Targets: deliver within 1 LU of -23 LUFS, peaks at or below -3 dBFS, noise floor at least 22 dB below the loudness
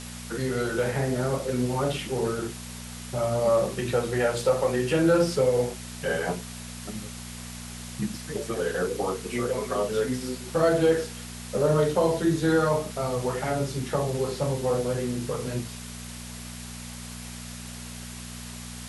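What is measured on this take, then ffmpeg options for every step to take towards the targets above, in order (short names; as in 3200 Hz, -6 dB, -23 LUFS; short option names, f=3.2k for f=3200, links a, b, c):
hum 60 Hz; harmonics up to 240 Hz; hum level -38 dBFS; noise floor -39 dBFS; noise floor target -49 dBFS; loudness -26.5 LUFS; peak -11.5 dBFS; loudness target -23.0 LUFS
-> -af "bandreject=f=60:t=h:w=4,bandreject=f=120:t=h:w=4,bandreject=f=180:t=h:w=4,bandreject=f=240:t=h:w=4"
-af "afftdn=nr=10:nf=-39"
-af "volume=3.5dB"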